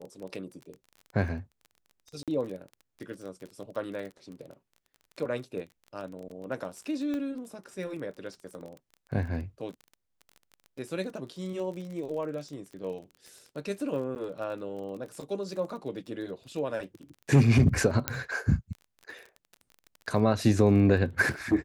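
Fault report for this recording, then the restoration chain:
crackle 25/s -38 dBFS
2.23–2.28 gap 47 ms
7.14 pop -23 dBFS
14.15–14.16 gap 9.5 ms
18.08 pop -8 dBFS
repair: de-click; interpolate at 2.23, 47 ms; interpolate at 14.15, 9.5 ms

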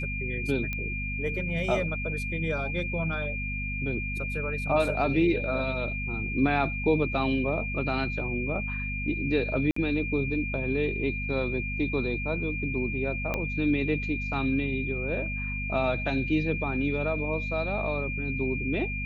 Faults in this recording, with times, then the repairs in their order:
hum 50 Hz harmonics 5 -34 dBFS
tone 2400 Hz -33 dBFS
0.73 pop -19 dBFS
9.71–9.76 gap 54 ms
13.34 pop -15 dBFS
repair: de-click; de-hum 50 Hz, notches 5; notch 2400 Hz, Q 30; interpolate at 9.71, 54 ms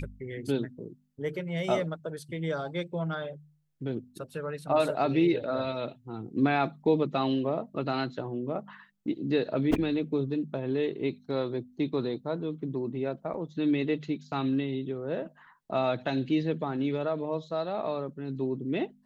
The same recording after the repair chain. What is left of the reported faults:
13.34 pop

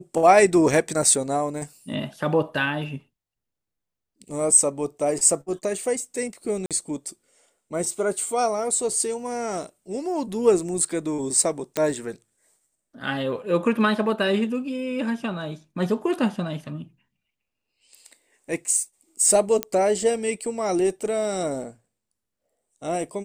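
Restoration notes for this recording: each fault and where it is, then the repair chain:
6.66–6.71 gap 47 ms
11.77 pop -9 dBFS
19.63 pop -8 dBFS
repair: de-click; interpolate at 6.66, 47 ms

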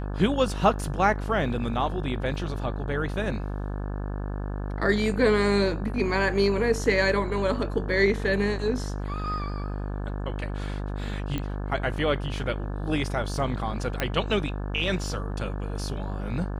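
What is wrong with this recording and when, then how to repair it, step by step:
buzz 50 Hz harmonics 35 -31 dBFS
11.38 pop -17 dBFS
14 pop -11 dBFS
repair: de-click; de-hum 50 Hz, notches 35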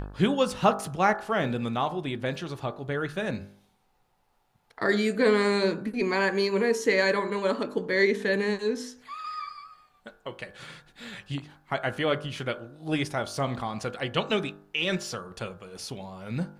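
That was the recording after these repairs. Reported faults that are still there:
none

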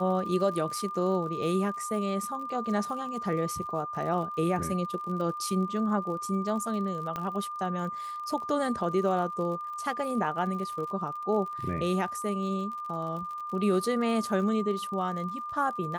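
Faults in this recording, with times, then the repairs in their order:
crackle 50/s -38 dBFS
tone 1200 Hz -34 dBFS
7.16 pop -19 dBFS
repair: de-click; notch 1200 Hz, Q 30

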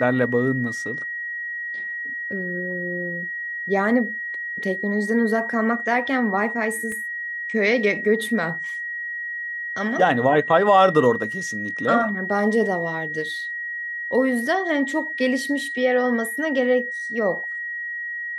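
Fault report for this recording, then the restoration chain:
tone 1900 Hz -27 dBFS
6.92 gap 2.2 ms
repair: notch 1900 Hz, Q 30; interpolate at 6.92, 2.2 ms

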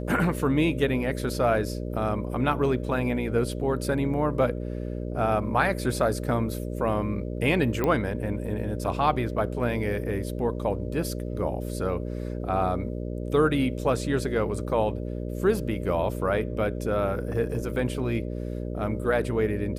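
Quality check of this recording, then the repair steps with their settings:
buzz 60 Hz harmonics 10 -32 dBFS
7.84 pop -13 dBFS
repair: de-click; de-hum 60 Hz, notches 10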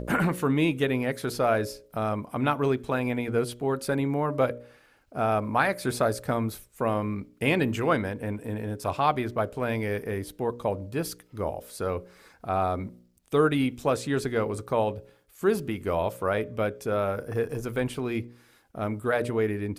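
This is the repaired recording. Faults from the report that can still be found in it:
none

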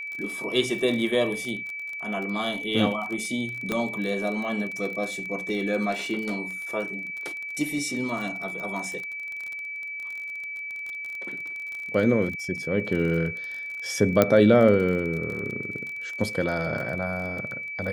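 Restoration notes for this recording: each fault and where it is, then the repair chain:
crackle 31/s -31 dBFS
tone 2300 Hz -32 dBFS
3.72 pop -13 dBFS
14.22 pop -5 dBFS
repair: de-click; notch 2300 Hz, Q 30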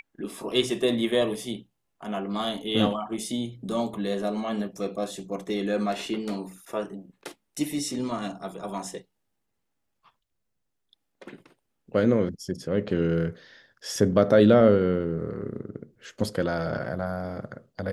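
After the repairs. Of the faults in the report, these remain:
3.72 pop

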